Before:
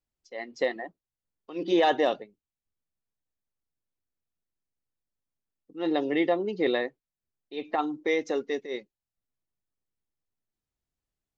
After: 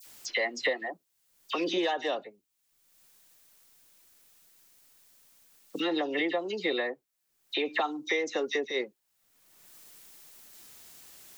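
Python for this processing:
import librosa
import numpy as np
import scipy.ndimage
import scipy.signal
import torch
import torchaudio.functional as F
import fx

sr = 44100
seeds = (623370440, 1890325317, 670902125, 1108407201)

y = fx.tilt_eq(x, sr, slope=2.5)
y = fx.rider(y, sr, range_db=4, speed_s=0.5)
y = fx.low_shelf(y, sr, hz=110.0, db=-6.5)
y = fx.dispersion(y, sr, late='lows', ms=57.0, hz=2200.0)
y = fx.band_squash(y, sr, depth_pct=100)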